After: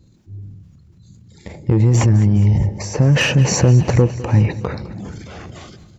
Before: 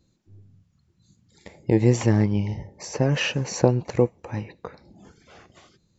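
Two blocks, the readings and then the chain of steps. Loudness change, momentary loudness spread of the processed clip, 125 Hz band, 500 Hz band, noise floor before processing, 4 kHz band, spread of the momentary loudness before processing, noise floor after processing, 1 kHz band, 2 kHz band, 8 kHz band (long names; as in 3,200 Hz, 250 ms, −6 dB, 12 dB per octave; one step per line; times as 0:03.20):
+8.0 dB, 18 LU, +11.5 dB, +2.0 dB, −67 dBFS, +7.5 dB, 16 LU, −50 dBFS, +5.5 dB, +8.0 dB, can't be measured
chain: in parallel at +2 dB: brickwall limiter −14 dBFS, peak gain reduction 11 dB
on the sum: soft clipping −8.5 dBFS, distortion −14 dB
parametric band 88 Hz +11 dB 2.9 octaves
transient designer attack −1 dB, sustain +7 dB
downward compressor, threshold −9 dBFS, peak gain reduction 5.5 dB
on a send: repeating echo 206 ms, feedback 58%, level −18 dB
on the sum: speech leveller 2 s
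dynamic equaliser 3,800 Hz, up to −5 dB, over −34 dBFS, Q 1.1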